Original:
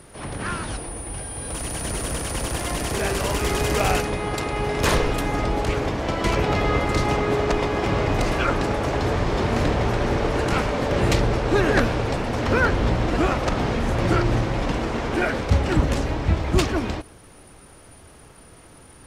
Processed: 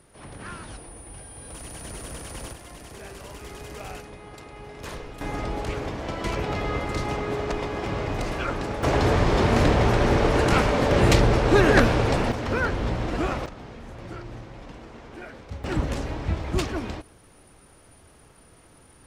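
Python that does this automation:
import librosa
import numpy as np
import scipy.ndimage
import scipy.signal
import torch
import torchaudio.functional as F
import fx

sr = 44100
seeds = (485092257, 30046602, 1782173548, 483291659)

y = fx.gain(x, sr, db=fx.steps((0.0, -10.0), (2.53, -17.0), (5.21, -6.5), (8.83, 2.0), (12.32, -5.5), (13.46, -18.0), (15.64, -6.0)))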